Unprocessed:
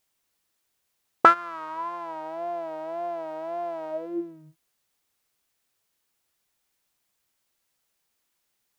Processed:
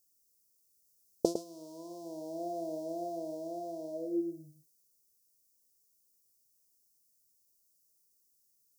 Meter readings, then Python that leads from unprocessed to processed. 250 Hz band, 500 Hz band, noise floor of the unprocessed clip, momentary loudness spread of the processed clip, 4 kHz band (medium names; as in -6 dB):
-0.5 dB, -5.5 dB, -77 dBFS, 13 LU, -7.5 dB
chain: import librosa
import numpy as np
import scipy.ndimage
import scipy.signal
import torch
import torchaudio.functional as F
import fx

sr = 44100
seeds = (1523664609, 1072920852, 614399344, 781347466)

p1 = scipy.signal.sosfilt(scipy.signal.ellip(3, 1.0, 80, [520.0, 5200.0], 'bandstop', fs=sr, output='sos'), x)
p2 = fx.high_shelf(p1, sr, hz=5200.0, db=10.0)
p3 = p2 + fx.echo_single(p2, sr, ms=106, db=-9.5, dry=0)
y = fx.rider(p3, sr, range_db=4, speed_s=2.0)